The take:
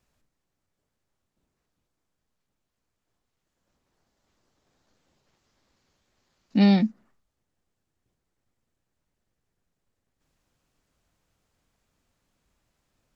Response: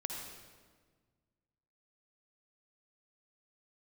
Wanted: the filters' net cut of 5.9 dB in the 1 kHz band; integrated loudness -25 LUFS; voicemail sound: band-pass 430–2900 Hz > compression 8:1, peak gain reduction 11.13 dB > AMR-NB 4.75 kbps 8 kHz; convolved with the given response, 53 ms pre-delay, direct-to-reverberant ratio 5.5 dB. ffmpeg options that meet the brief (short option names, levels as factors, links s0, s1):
-filter_complex "[0:a]equalizer=f=1000:t=o:g=-8,asplit=2[s0][s1];[1:a]atrim=start_sample=2205,adelay=53[s2];[s1][s2]afir=irnorm=-1:irlink=0,volume=0.473[s3];[s0][s3]amix=inputs=2:normalize=0,highpass=430,lowpass=2900,acompressor=threshold=0.0158:ratio=8,volume=10" -ar 8000 -c:a libopencore_amrnb -b:a 4750